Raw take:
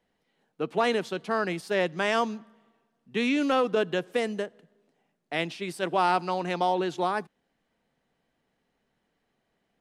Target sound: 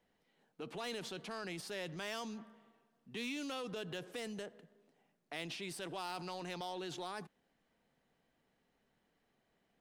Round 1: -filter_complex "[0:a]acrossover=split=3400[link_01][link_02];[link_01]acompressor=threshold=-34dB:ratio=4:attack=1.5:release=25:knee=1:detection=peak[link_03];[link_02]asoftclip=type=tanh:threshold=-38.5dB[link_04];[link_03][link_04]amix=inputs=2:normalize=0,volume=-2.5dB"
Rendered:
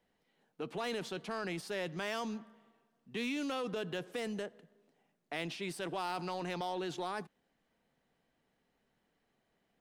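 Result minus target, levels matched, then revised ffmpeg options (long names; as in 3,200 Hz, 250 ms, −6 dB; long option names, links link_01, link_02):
downward compressor: peak gain reduction −5.5 dB
-filter_complex "[0:a]acrossover=split=3400[link_01][link_02];[link_01]acompressor=threshold=-41.5dB:ratio=4:attack=1.5:release=25:knee=1:detection=peak[link_03];[link_02]asoftclip=type=tanh:threshold=-38.5dB[link_04];[link_03][link_04]amix=inputs=2:normalize=0,volume=-2.5dB"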